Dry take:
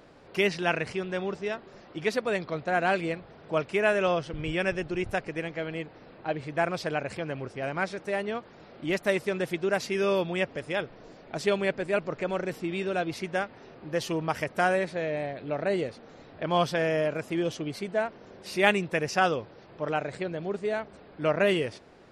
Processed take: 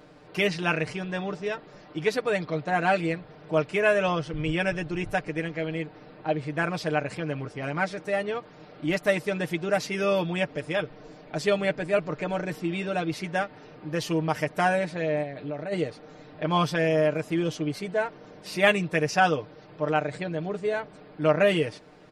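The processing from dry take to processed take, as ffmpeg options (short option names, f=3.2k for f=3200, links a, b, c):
-filter_complex "[0:a]asplit=3[a][b][c];[a]afade=t=out:st=15.22:d=0.02[d];[b]acompressor=threshold=-35dB:ratio=3:attack=3.2:release=140:knee=1:detection=peak,afade=t=in:st=15.22:d=0.02,afade=t=out:st=15.71:d=0.02[e];[c]afade=t=in:st=15.71:d=0.02[f];[d][e][f]amix=inputs=3:normalize=0,equalizer=f=210:w=1.5:g=2,aecho=1:1:6.6:0.68"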